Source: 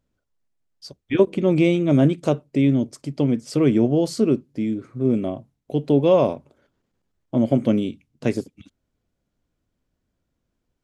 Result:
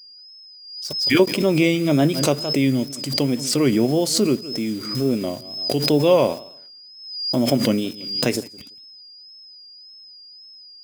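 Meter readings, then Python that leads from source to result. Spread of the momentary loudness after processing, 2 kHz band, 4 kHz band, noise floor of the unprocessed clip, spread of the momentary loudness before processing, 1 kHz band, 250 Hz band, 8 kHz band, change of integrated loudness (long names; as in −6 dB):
11 LU, +7.5 dB, +15.5 dB, −77 dBFS, 11 LU, +2.5 dB, −0.5 dB, +15.0 dB, +1.0 dB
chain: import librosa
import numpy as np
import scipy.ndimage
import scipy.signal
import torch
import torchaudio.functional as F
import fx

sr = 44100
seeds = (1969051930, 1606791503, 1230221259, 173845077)

p1 = x + 10.0 ** (-48.0 / 20.0) * np.sin(2.0 * np.pi * 5000.0 * np.arange(len(x)) / sr)
p2 = fx.low_shelf(p1, sr, hz=270.0, db=3.0)
p3 = fx.quant_dither(p2, sr, seeds[0], bits=6, dither='none')
p4 = p2 + (p3 * 10.0 ** (-11.5 / 20.0))
p5 = fx.tilt_eq(p4, sr, slope=2.5)
p6 = p5 + fx.echo_feedback(p5, sr, ms=167, feedback_pct=22, wet_db=-22.0, dry=0)
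p7 = fx.wow_flutter(p6, sr, seeds[1], rate_hz=2.1, depth_cents=66.0)
y = fx.pre_swell(p7, sr, db_per_s=62.0)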